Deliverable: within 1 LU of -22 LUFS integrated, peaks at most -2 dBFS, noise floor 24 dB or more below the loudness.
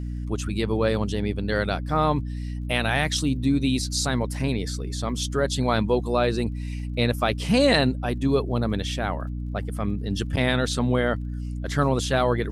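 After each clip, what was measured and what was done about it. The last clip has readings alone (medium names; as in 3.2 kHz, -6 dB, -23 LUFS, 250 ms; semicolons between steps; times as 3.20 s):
tick rate 29 per s; hum 60 Hz; highest harmonic 300 Hz; hum level -28 dBFS; loudness -24.5 LUFS; peak level -8.0 dBFS; loudness target -22.0 LUFS
-> de-click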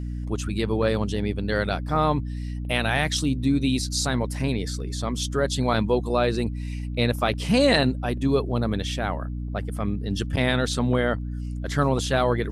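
tick rate 0.24 per s; hum 60 Hz; highest harmonic 300 Hz; hum level -28 dBFS
-> hum notches 60/120/180/240/300 Hz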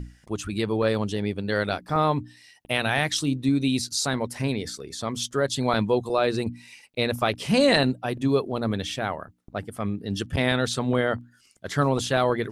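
hum not found; loudness -25.5 LUFS; peak level -8.0 dBFS; loudness target -22.0 LUFS
-> trim +3.5 dB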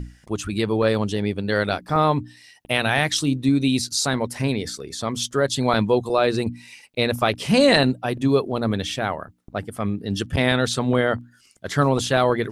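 loudness -22.0 LUFS; peak level -4.5 dBFS; noise floor -55 dBFS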